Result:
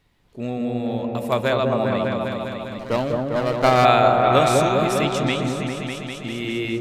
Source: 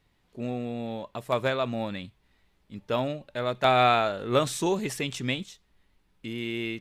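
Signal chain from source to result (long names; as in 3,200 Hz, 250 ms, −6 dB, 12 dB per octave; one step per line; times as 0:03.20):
0:01.13–0:01.56: high-shelf EQ 12,000 Hz +10 dB
0:04.52–0:04.95: downward compressor, threshold −27 dBFS, peak gain reduction 6 dB
echo whose low-pass opens from repeat to repeat 200 ms, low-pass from 750 Hz, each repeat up 1 octave, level 0 dB
0:02.79–0:03.85: windowed peak hold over 9 samples
level +4.5 dB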